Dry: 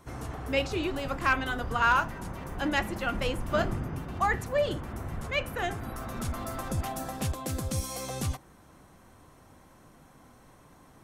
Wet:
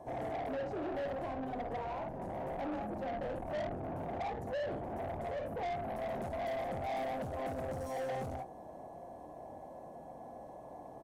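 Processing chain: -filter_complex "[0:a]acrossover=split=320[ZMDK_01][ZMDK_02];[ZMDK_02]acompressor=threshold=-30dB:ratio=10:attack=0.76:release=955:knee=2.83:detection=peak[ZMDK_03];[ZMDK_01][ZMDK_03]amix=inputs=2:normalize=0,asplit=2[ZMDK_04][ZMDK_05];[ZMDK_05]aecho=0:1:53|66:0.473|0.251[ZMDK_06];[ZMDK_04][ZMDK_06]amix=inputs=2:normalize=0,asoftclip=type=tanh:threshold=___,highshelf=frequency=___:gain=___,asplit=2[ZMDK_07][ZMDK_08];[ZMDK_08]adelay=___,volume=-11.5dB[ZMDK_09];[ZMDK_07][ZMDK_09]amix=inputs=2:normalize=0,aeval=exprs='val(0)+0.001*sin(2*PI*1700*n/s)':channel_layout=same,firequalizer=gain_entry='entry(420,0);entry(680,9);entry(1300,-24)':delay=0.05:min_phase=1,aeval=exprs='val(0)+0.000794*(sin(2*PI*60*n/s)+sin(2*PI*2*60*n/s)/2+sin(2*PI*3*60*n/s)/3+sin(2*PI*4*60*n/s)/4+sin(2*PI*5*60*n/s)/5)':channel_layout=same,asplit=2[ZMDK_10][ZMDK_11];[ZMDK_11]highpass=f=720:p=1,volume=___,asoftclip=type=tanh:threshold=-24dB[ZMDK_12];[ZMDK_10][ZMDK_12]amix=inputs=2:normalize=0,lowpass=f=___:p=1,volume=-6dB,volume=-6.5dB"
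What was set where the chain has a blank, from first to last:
-33.5dB, 7200, 9, 23, 23dB, 5800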